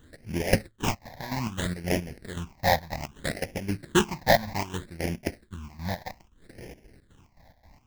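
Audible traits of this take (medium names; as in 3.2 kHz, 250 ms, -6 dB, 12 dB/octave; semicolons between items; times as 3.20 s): aliases and images of a low sample rate 1.3 kHz, jitter 20%; phasing stages 8, 0.63 Hz, lowest notch 370–1200 Hz; chopped level 3.8 Hz, depth 65%, duty 60%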